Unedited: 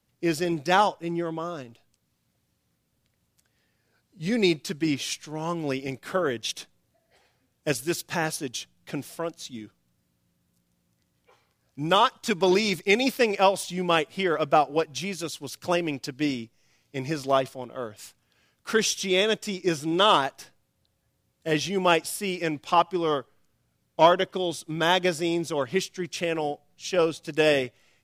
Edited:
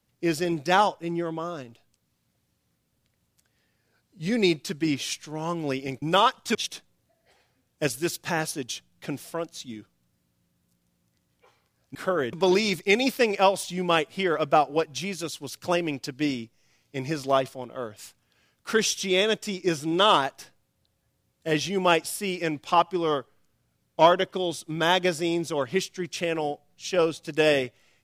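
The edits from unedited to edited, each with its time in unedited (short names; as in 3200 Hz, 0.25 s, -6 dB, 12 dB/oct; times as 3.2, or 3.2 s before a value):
6.02–6.4 swap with 11.8–12.33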